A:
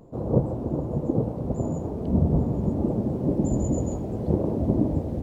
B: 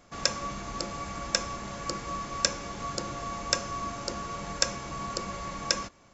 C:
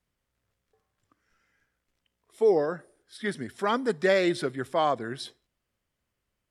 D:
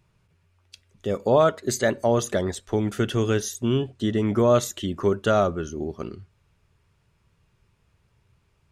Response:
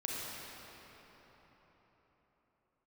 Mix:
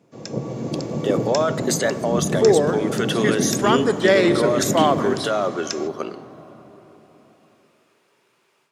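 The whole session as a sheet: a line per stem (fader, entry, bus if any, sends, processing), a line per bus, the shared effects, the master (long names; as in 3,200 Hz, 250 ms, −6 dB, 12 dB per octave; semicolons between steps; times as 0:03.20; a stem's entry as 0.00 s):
−10.5 dB, 0.00 s, send −7.5 dB, no processing
−12.0 dB, 0.00 s, no send, Bessel high-pass filter 1,400 Hz
−3.0 dB, 0.00 s, send −13 dB, no processing
−1.5 dB, 0.00 s, send −19.5 dB, high-pass filter 410 Hz 12 dB per octave; brickwall limiter −21 dBFS, peak gain reduction 12 dB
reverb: on, RT60 4.6 s, pre-delay 31 ms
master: high-pass filter 130 Hz 24 dB per octave; automatic gain control gain up to 10 dB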